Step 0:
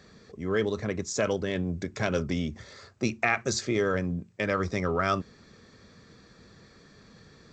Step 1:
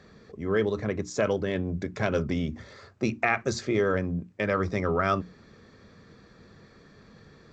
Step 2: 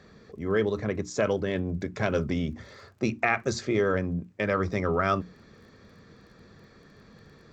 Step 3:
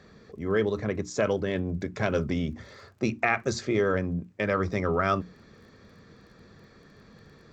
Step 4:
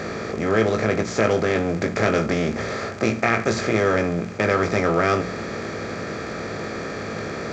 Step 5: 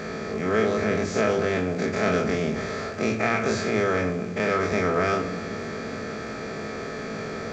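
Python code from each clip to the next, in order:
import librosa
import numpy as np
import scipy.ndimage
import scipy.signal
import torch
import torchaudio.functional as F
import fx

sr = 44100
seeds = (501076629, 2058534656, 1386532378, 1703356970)

y1 = fx.high_shelf(x, sr, hz=4200.0, db=-11.5)
y1 = fx.hum_notches(y1, sr, base_hz=60, count=5)
y1 = F.gain(torch.from_numpy(y1), 2.0).numpy()
y2 = fx.dmg_crackle(y1, sr, seeds[0], per_s=19.0, level_db=-51.0)
y3 = y2
y4 = fx.bin_compress(y3, sr, power=0.4)
y4 = fx.doubler(y4, sr, ms=18.0, db=-6.5)
y5 = fx.spec_dilate(y4, sr, span_ms=60)
y5 = fx.room_shoebox(y5, sr, seeds[1], volume_m3=3100.0, walls='furnished', distance_m=1.5)
y5 = F.gain(torch.from_numpy(y5), -8.0).numpy()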